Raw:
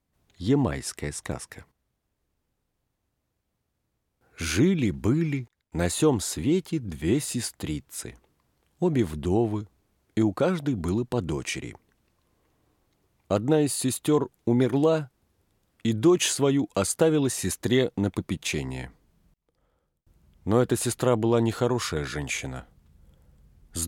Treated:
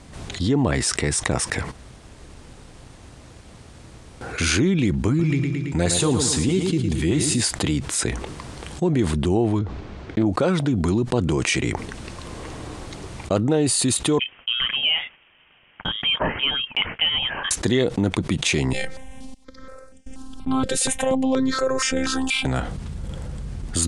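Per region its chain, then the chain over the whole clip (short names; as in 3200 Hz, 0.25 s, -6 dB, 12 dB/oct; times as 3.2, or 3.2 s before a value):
5.08–7.41 LFO notch saw up 6.4 Hz 230–2200 Hz + feedback echo 0.111 s, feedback 44%, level -10 dB
9.59–10.26 air absorption 190 m + Doppler distortion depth 0.16 ms
14.19–17.51 HPF 630 Hz + inverted band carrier 3500 Hz + upward expander, over -46 dBFS
18.73–22.45 robotiser 262 Hz + step phaser 4.2 Hz 260–4100 Hz
whole clip: gate -53 dBFS, range -6 dB; elliptic low-pass 9400 Hz, stop band 80 dB; fast leveller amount 70%; gain +1 dB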